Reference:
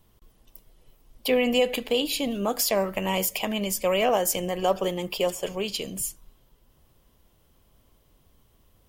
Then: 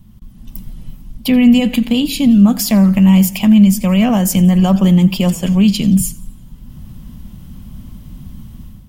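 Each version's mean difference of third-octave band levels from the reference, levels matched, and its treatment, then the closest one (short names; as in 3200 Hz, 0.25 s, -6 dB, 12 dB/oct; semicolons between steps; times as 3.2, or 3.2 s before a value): 8.5 dB: resonant low shelf 300 Hz +12.5 dB, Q 3; in parallel at +0.5 dB: limiter -12.5 dBFS, peak gain reduction 8 dB; on the sum: AGC gain up to 11 dB; warbling echo 87 ms, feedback 51%, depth 125 cents, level -21 dB; gain -1 dB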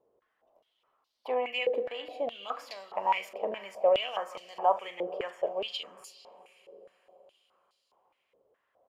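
12.0 dB: bell 750 Hz +11 dB 2.8 oct; doubler 40 ms -13.5 dB; on a send: diffused feedback echo 0.482 s, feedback 46%, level -15 dB; on the sum: stepped band-pass 4.8 Hz 480–4400 Hz; gain -3.5 dB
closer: first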